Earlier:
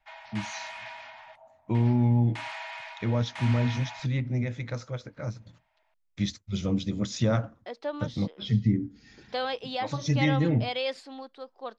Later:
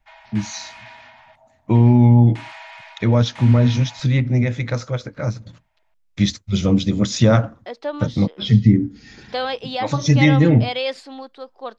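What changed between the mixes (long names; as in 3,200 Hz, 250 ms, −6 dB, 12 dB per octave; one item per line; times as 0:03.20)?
first voice +11.0 dB
second voice +6.5 dB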